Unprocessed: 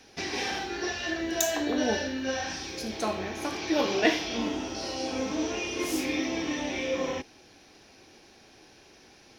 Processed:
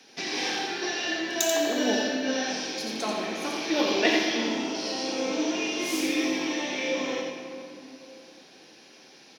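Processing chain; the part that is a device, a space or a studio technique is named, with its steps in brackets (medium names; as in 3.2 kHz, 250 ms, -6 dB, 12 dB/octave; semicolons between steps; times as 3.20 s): PA in a hall (high-pass 160 Hz 24 dB/octave; peaking EQ 3.8 kHz +4.5 dB 1.5 oct; delay 87 ms -4.5 dB; reverberation RT60 2.7 s, pre-delay 46 ms, DRR 5 dB); trim -1.5 dB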